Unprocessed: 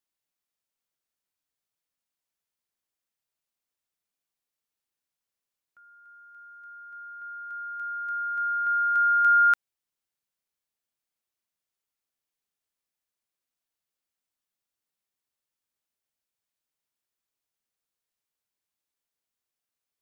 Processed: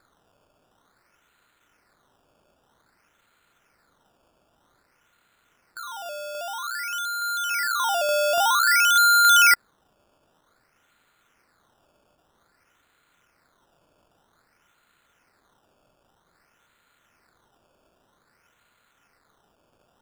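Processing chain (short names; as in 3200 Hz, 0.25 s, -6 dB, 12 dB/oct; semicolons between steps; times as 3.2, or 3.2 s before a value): per-bin compression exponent 0.6; steep high-pass 900 Hz 72 dB/oct; decimation with a swept rate 15×, swing 100% 0.52 Hz; gain +3.5 dB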